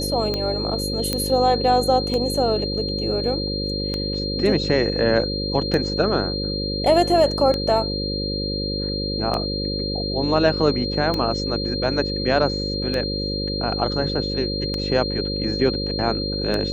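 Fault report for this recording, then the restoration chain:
mains buzz 50 Hz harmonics 11 −27 dBFS
scratch tick 33 1/3 rpm −11 dBFS
whistle 4,200 Hz −27 dBFS
0:01.13: click −7 dBFS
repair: click removal
hum removal 50 Hz, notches 11
notch filter 4,200 Hz, Q 30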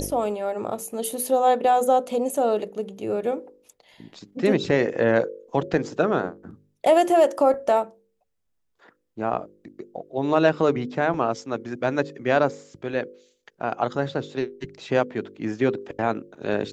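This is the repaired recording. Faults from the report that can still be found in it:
none of them is left

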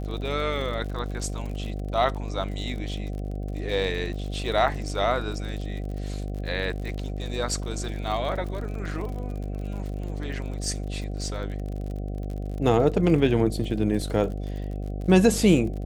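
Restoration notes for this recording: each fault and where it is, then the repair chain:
mains buzz 50 Hz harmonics 15 −31 dBFS
surface crackle 55 per second −34 dBFS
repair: click removal
hum removal 50 Hz, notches 15

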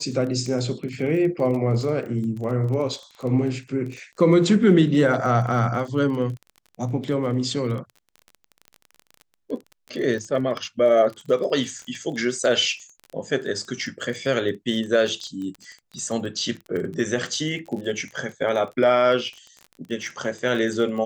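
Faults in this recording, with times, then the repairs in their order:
surface crackle 24 per second −31 dBFS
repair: click removal

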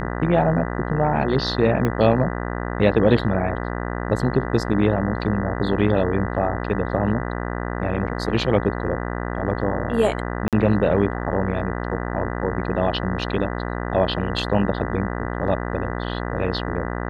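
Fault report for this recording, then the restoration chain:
mains buzz 60 Hz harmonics 33 −27 dBFS
0:01.85: click −10 dBFS
0:10.48–0:10.53: drop-out 47 ms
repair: click removal
hum removal 60 Hz, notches 33
repair the gap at 0:10.48, 47 ms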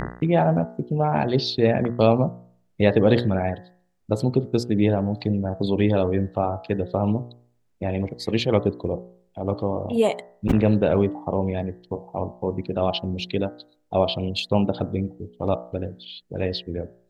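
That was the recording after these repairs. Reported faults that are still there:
0:01.85: click

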